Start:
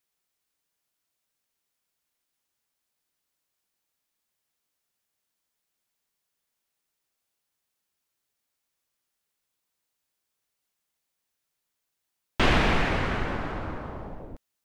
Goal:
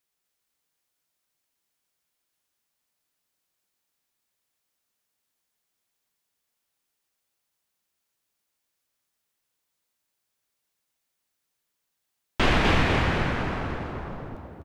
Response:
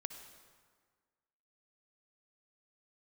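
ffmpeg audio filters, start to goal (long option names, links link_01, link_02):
-filter_complex "[0:a]asplit=6[link_01][link_02][link_03][link_04][link_05][link_06];[link_02]adelay=250,afreqshift=60,volume=-4dB[link_07];[link_03]adelay=500,afreqshift=120,volume=-11.7dB[link_08];[link_04]adelay=750,afreqshift=180,volume=-19.5dB[link_09];[link_05]adelay=1000,afreqshift=240,volume=-27.2dB[link_10];[link_06]adelay=1250,afreqshift=300,volume=-35dB[link_11];[link_01][link_07][link_08][link_09][link_10][link_11]amix=inputs=6:normalize=0"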